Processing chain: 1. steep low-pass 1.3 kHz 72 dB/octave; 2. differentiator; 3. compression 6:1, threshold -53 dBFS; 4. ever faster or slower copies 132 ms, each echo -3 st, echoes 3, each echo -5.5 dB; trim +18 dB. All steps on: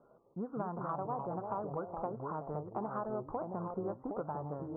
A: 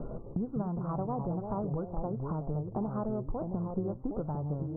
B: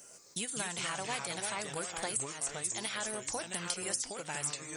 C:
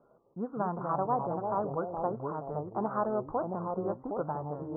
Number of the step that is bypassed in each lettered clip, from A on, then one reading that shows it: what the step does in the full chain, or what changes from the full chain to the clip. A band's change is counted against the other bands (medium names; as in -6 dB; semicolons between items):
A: 2, 1 kHz band -9.5 dB; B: 1, 2 kHz band +22.5 dB; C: 3, mean gain reduction 4.0 dB